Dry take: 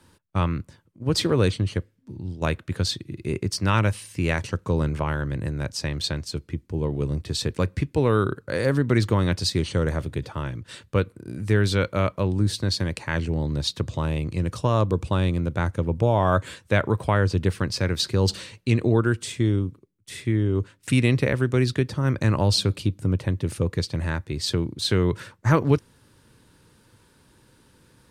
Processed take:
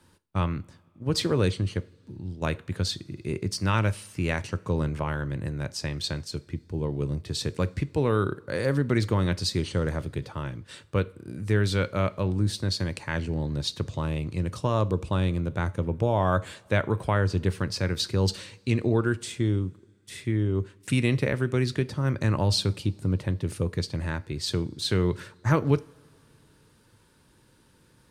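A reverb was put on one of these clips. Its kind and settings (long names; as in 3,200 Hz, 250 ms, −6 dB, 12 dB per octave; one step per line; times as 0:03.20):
coupled-rooms reverb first 0.36 s, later 2.7 s, from −22 dB, DRR 15 dB
level −3.5 dB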